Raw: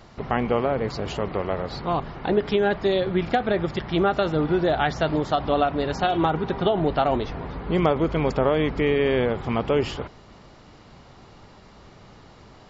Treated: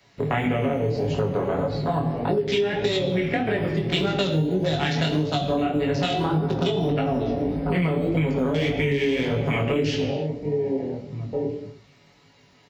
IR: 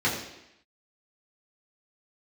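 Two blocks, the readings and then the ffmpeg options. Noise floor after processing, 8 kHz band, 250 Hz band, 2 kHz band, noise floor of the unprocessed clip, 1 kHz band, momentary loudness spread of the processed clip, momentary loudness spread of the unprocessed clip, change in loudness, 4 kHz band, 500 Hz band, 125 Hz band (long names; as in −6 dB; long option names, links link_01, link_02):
−56 dBFS, can't be measured, +1.5 dB, +0.5 dB, −49 dBFS, −4.5 dB, 4 LU, 6 LU, −0.5 dB, +3.5 dB, −1.0 dB, +4.5 dB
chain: -filter_complex "[0:a]aecho=1:1:7.1:0.56,acrossover=split=240[link_01][link_02];[link_01]acrusher=samples=11:mix=1:aa=0.000001:lfo=1:lforange=6.6:lforate=0.25[link_03];[link_03][link_02]amix=inputs=2:normalize=0,highshelf=frequency=1800:width_type=q:width=1.5:gain=8.5,asplit=2[link_04][link_05];[link_05]adelay=1633,volume=-12dB,highshelf=frequency=4000:gain=-36.7[link_06];[link_04][link_06]amix=inputs=2:normalize=0,afwtdn=0.0501,asplit=2[link_07][link_08];[1:a]atrim=start_sample=2205,afade=type=out:start_time=0.38:duration=0.01,atrim=end_sample=17199[link_09];[link_08][link_09]afir=irnorm=-1:irlink=0,volume=-14.5dB[link_10];[link_07][link_10]amix=inputs=2:normalize=0,acrossover=split=350|3000[link_11][link_12][link_13];[link_12]acompressor=threshold=-25dB:ratio=6[link_14];[link_11][link_14][link_13]amix=inputs=3:normalize=0,flanger=delay=18.5:depth=6.3:speed=1.7,acompressor=threshold=-26dB:ratio=6,highpass=54,volume=6.5dB"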